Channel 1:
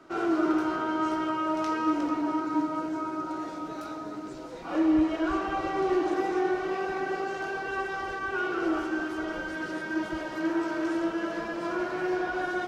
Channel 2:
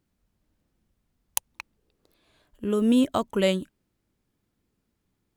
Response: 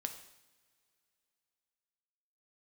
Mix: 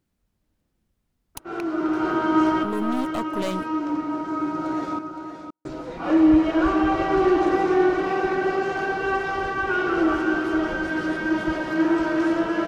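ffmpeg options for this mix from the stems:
-filter_complex "[0:a]bass=f=250:g=4,treble=f=4000:g=-12,acontrast=48,adynamicequalizer=threshold=0.00562:dfrequency=3600:dqfactor=0.7:tfrequency=3600:tqfactor=0.7:attack=5:release=100:ratio=0.375:range=3.5:mode=boostabove:tftype=highshelf,adelay=1350,volume=1,asplit=3[s0][s1][s2];[s0]atrim=end=4.99,asetpts=PTS-STARTPTS,afade=t=out:st=4.986:d=0.004:c=hsin[s3];[s1]atrim=start=4.99:end=5.65,asetpts=PTS-STARTPTS,volume=0[s4];[s2]atrim=start=5.65,asetpts=PTS-STARTPTS,afade=t=in:d=0.004:c=hsin[s5];[s3][s4][s5]concat=n=3:v=0:a=1,asplit=3[s6][s7][s8];[s7]volume=0.0668[s9];[s8]volume=0.422[s10];[1:a]aeval=exprs='(tanh(22.4*val(0)+0.5)-tanh(0.5))/22.4':c=same,volume=1.26,asplit=2[s11][s12];[s12]apad=whole_len=618561[s13];[s6][s13]sidechaincompress=threshold=0.00631:ratio=8:attack=32:release=864[s14];[2:a]atrim=start_sample=2205[s15];[s9][s15]afir=irnorm=-1:irlink=0[s16];[s10]aecho=0:1:516:1[s17];[s14][s11][s16][s17]amix=inputs=4:normalize=0"

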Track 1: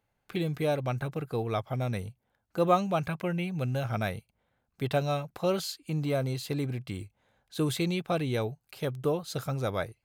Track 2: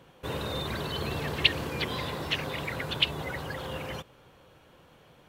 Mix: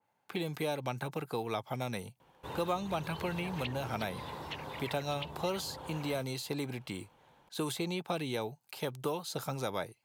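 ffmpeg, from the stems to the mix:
-filter_complex "[0:a]highpass=170,adynamicequalizer=threshold=0.00501:dfrequency=2400:dqfactor=0.7:tfrequency=2400:tqfactor=0.7:attack=5:release=100:ratio=0.375:range=3:mode=boostabove:tftype=highshelf,volume=0.944[s0];[1:a]adelay=2200,volume=0.316[s1];[s0][s1]amix=inputs=2:normalize=0,equalizer=f=900:t=o:w=0.41:g=10,acrossover=split=520|1200[s2][s3][s4];[s2]acompressor=threshold=0.0178:ratio=4[s5];[s3]acompressor=threshold=0.00794:ratio=4[s6];[s4]acompressor=threshold=0.01:ratio=4[s7];[s5][s6][s7]amix=inputs=3:normalize=0"

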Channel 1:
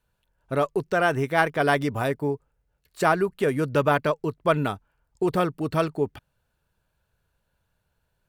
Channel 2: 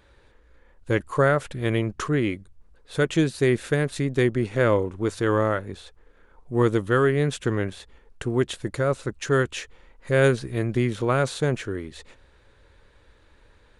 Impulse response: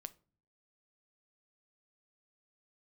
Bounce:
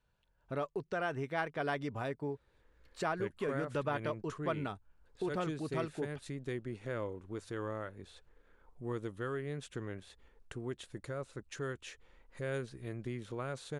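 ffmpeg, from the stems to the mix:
-filter_complex "[0:a]lowpass=6300,volume=0.668[s0];[1:a]adelay=2300,volume=0.335[s1];[s0][s1]amix=inputs=2:normalize=0,acompressor=threshold=0.00282:ratio=1.5"

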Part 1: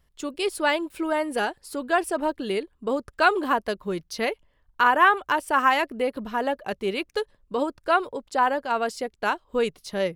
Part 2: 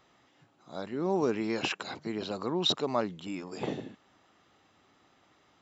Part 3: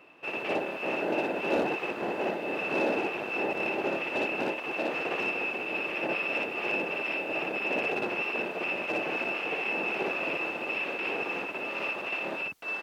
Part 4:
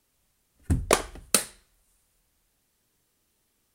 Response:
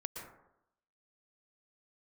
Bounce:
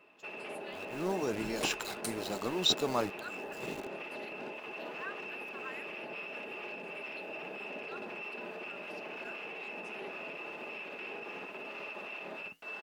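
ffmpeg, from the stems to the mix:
-filter_complex "[0:a]highpass=f=1400:w=0.5412,highpass=f=1400:w=1.3066,asplit=2[s0][s1];[s1]afreqshift=1.7[s2];[s0][s2]amix=inputs=2:normalize=1,volume=0.158,asplit=2[s3][s4];[1:a]equalizer=f=9000:t=o:w=1.1:g=14,aeval=exprs='val(0)*gte(abs(val(0)),0.0158)':c=same,volume=1.33[s5];[2:a]aecho=1:1:4.8:0.36,alimiter=level_in=1.5:limit=0.0631:level=0:latency=1:release=49,volume=0.668,volume=0.75[s6];[3:a]aecho=1:1:6.5:0.99,adelay=700,volume=0.141[s7];[s4]apad=whole_len=247582[s8];[s5][s8]sidechaincompress=threshold=0.00224:ratio=8:attack=31:release=525[s9];[s3][s9][s6][s7]amix=inputs=4:normalize=0,flanger=delay=1.8:depth=7.9:regen=-73:speed=0.76:shape=triangular"

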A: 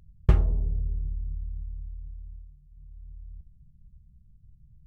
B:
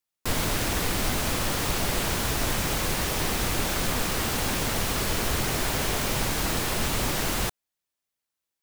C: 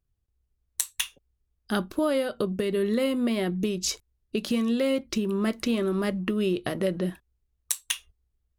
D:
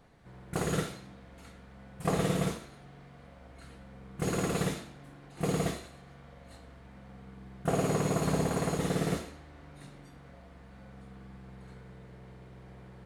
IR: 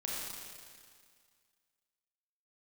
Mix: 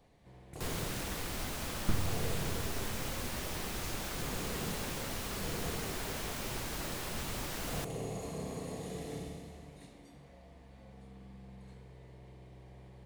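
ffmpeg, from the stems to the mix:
-filter_complex "[0:a]aeval=exprs='abs(val(0))':c=same,adelay=1600,volume=0.316[s0];[1:a]adelay=350,volume=0.237[s1];[2:a]acompressor=threshold=0.0178:ratio=6,volume=0.168,asplit=2[s2][s3];[s3]volume=0.668[s4];[3:a]equalizer=f=1400:t=o:w=0.53:g=-12.5,volume=0.631,asplit=2[s5][s6];[s6]volume=0.335[s7];[s2][s5]amix=inputs=2:normalize=0,acrossover=split=170[s8][s9];[s9]acompressor=threshold=0.00251:ratio=6[s10];[s8][s10]amix=inputs=2:normalize=0,alimiter=level_in=3.98:limit=0.0631:level=0:latency=1:release=142,volume=0.251,volume=1[s11];[4:a]atrim=start_sample=2205[s12];[s4][s7]amix=inputs=2:normalize=0[s13];[s13][s12]afir=irnorm=-1:irlink=0[s14];[s0][s1][s11][s14]amix=inputs=4:normalize=0"

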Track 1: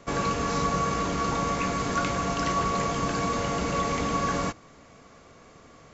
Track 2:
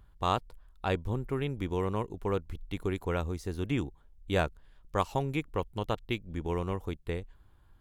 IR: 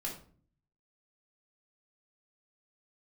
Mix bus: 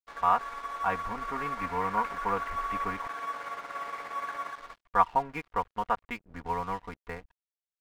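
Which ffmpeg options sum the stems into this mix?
-filter_complex "[0:a]highpass=1100,tremolo=f=17:d=0.37,volume=0.562,asplit=3[s0][s1][s2];[s1]volume=0.112[s3];[s2]volume=0.631[s4];[1:a]lowshelf=f=640:t=q:w=1.5:g=-10.5,aecho=1:1:4.2:0.93,volume=1.19,asplit=3[s5][s6][s7];[s5]atrim=end=3.07,asetpts=PTS-STARTPTS,afade=t=out:st=3.066:d=0.004:c=hsin[s8];[s6]atrim=start=3.07:end=4.6,asetpts=PTS-STARTPTS,volume=0[s9];[s7]atrim=start=4.6,asetpts=PTS-STARTPTS,afade=t=in:d=0.004:c=hsin[s10];[s8][s9][s10]concat=n=3:v=0:a=1[s11];[2:a]atrim=start_sample=2205[s12];[s3][s12]afir=irnorm=-1:irlink=0[s13];[s4]aecho=0:1:239:1[s14];[s0][s11][s13][s14]amix=inputs=4:normalize=0,lowpass=f=2000:w=0.5412,lowpass=f=2000:w=1.3066,dynaudnorm=f=480:g=5:m=1.41,aeval=exprs='sgn(val(0))*max(abs(val(0))-0.00376,0)':c=same"

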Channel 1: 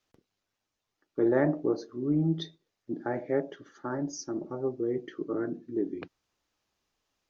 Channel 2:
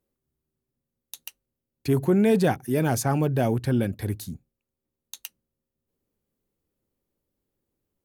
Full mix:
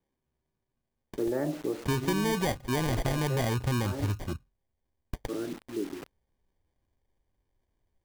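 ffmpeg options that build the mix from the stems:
-filter_complex "[0:a]lowpass=f=1400:p=1,acrusher=bits=6:mix=0:aa=0.000001,volume=0.75,asplit=3[s0][s1][s2];[s0]atrim=end=4.33,asetpts=PTS-STARTPTS,afade=t=out:st=4.326:d=0.004:c=hsin[s3];[s1]atrim=start=4.33:end=5.25,asetpts=PTS-STARTPTS,volume=0[s4];[s2]atrim=start=5.25,asetpts=PTS-STARTPTS,afade=t=in:d=0.004:c=hsin[s5];[s3][s4][s5]concat=n=3:v=0:a=1[s6];[1:a]acrusher=samples=33:mix=1:aa=0.000001,asubboost=boost=4.5:cutoff=88,volume=0.891[s7];[s6][s7]amix=inputs=2:normalize=0,acompressor=threshold=0.0562:ratio=5"

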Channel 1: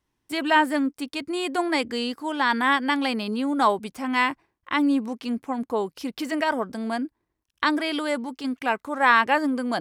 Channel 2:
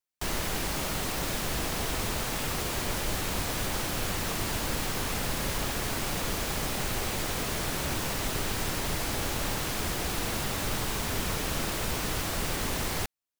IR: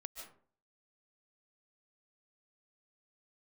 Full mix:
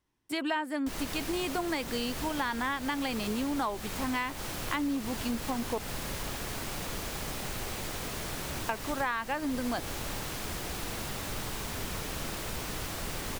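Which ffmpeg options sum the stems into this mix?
-filter_complex "[0:a]volume=0.75,asplit=3[s0][s1][s2];[s0]atrim=end=5.78,asetpts=PTS-STARTPTS,afade=t=out:st=5.776:d=0.004:c=hsin[s3];[s1]atrim=start=5.78:end=8.69,asetpts=PTS-STARTPTS,volume=0[s4];[s2]atrim=start=8.69,asetpts=PTS-STARTPTS,afade=t=in:d=0.004:c=hsin[s5];[s3][s4][s5]concat=n=3:v=0:a=1[s6];[1:a]adelay=650,volume=0.531[s7];[s6][s7]amix=inputs=2:normalize=0,acompressor=threshold=0.0398:ratio=8"

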